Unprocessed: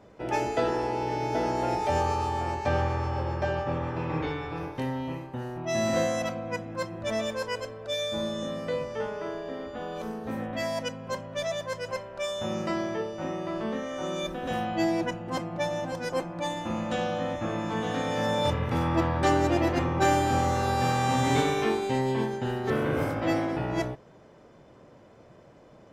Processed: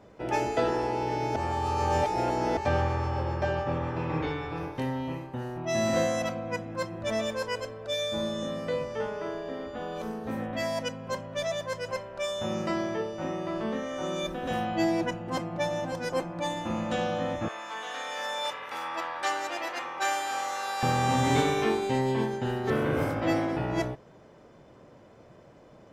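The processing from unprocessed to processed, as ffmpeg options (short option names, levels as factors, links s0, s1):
-filter_complex "[0:a]asettb=1/sr,asplit=3[s0][s1][s2];[s0]atrim=end=17.484[s3];[s1]atrim=start=17.48:end=20.83,asetpts=PTS-STARTPTS,afade=t=in:d=0.004:c=qsin,afade=t=out:st=3.346:d=0.004:c=qsin,highpass=950[s4];[s2]atrim=start=20.826[s5];[s3][s4]acrossfade=d=0.004:c1=hsin:c2=qsin[s6];[s6][s5]acrossfade=d=0.004:c1=qsin:c2=hsin,asplit=3[s7][s8][s9];[s7]atrim=end=1.362[s10];[s8]atrim=start=1.358:end=2.572,asetpts=PTS-STARTPTS,areverse[s11];[s9]atrim=start=2.568[s12];[s10][s11]acrossfade=d=0.004:c1=hsin:c2=hsin[s13];[s13][s12]acrossfade=d=0.004:c1=hsin:c2=hsin"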